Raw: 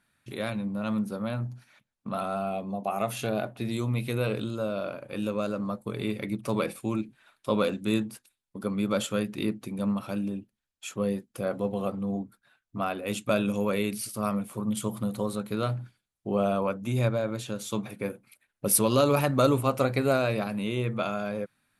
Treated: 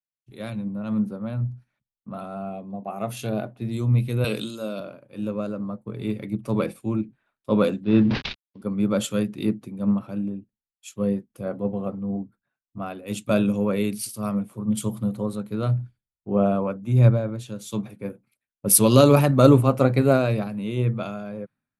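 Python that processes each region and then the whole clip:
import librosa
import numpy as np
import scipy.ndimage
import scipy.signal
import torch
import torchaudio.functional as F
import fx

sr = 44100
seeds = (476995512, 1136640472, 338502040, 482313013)

y = fx.chain(x, sr, fx.highpass(hz=150.0, slope=24),
    fx.high_shelf(hz=2400.0, db=11.0), at=(4.24, 4.8))
y = fx.chain(y, sr, fx.cvsd(bps=32000),
    fx.lowpass(hz=3800.0, slope=24),
    fx.sustainer(db_per_s=23.0), at=(7.83, 8.62))
y = fx.low_shelf(y, sr, hz=450.0, db=9.5)
y = fx.band_widen(y, sr, depth_pct=100)
y = y * librosa.db_to_amplitude(-2.5)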